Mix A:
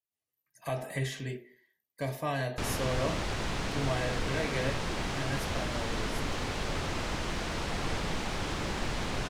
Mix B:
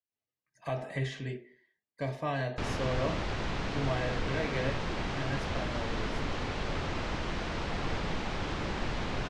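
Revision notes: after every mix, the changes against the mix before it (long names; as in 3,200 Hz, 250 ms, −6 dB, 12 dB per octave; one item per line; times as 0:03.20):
master: add high-frequency loss of the air 110 metres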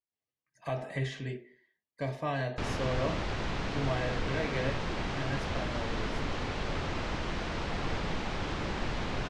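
nothing changed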